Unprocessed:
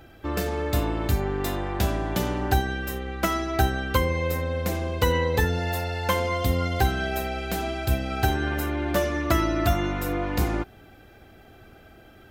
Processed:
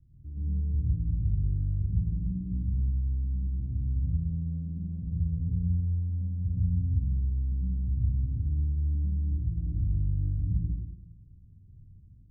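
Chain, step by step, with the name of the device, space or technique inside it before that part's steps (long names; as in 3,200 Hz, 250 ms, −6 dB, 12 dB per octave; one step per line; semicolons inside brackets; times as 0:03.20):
club heard from the street (brickwall limiter −16 dBFS, peak gain reduction 8.5 dB; low-pass filter 160 Hz 24 dB per octave; convolution reverb RT60 0.90 s, pre-delay 93 ms, DRR −6 dB)
level −6.5 dB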